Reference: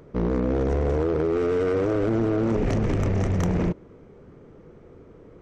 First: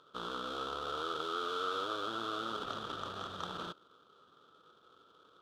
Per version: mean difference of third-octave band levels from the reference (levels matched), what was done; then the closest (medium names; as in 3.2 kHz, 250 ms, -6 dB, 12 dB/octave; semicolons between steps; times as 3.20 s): 10.0 dB: in parallel at -5 dB: sample-rate reducer 1.8 kHz, jitter 20%; on the sum: two resonant band-passes 2.1 kHz, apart 1.4 oct; trim +2 dB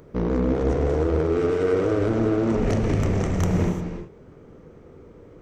2.0 dB: treble shelf 6.8 kHz +6.5 dB; gated-style reverb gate 380 ms flat, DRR 5 dB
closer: second